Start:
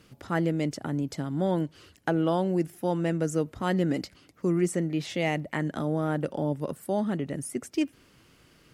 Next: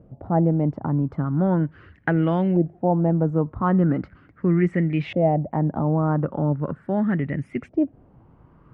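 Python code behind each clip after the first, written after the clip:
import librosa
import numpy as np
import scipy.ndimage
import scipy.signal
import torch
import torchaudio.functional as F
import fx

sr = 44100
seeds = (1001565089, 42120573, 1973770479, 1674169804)

y = fx.filter_lfo_lowpass(x, sr, shape='saw_up', hz=0.39, low_hz=630.0, high_hz=2500.0, q=3.7)
y = fx.bass_treble(y, sr, bass_db=11, treble_db=-4)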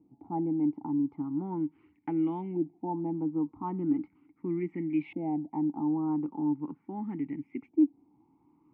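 y = fx.vowel_filter(x, sr, vowel='u')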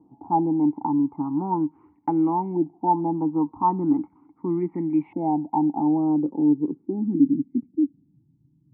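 y = fx.filter_sweep_lowpass(x, sr, from_hz=960.0, to_hz=140.0, start_s=5.43, end_s=8.26, q=3.5)
y = y * librosa.db_to_amplitude(6.0)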